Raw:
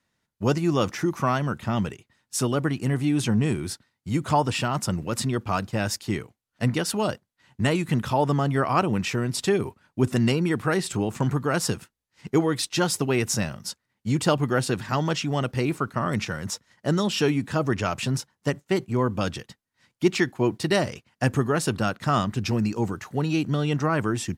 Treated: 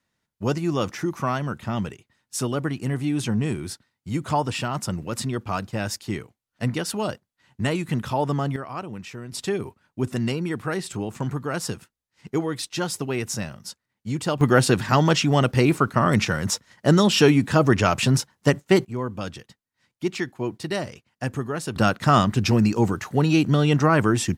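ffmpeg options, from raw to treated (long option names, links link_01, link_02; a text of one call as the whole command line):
ffmpeg -i in.wav -af "asetnsamples=nb_out_samples=441:pad=0,asendcmd='8.56 volume volume -11dB;9.32 volume volume -3.5dB;14.41 volume volume 6.5dB;18.85 volume volume -5dB;21.76 volume volume 5.5dB',volume=-1.5dB" out.wav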